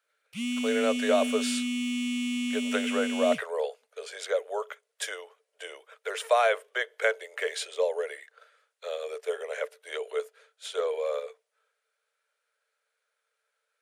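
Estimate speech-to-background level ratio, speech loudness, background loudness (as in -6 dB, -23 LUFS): 0.0 dB, -30.5 LUFS, -30.5 LUFS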